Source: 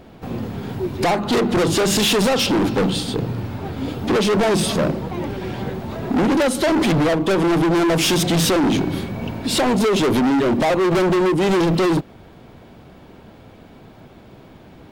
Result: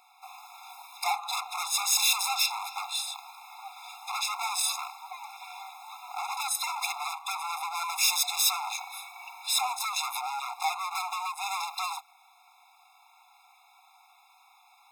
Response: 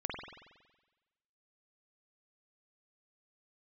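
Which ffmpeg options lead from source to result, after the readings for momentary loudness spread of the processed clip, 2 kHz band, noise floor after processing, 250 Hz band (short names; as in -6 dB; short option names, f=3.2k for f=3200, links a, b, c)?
20 LU, -9.5 dB, -61 dBFS, under -40 dB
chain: -af "crystalizer=i=2:c=0,afftfilt=real='re*eq(mod(floor(b*sr/1024/690),2),1)':imag='im*eq(mod(floor(b*sr/1024/690),2),1)':win_size=1024:overlap=0.75,volume=-7dB"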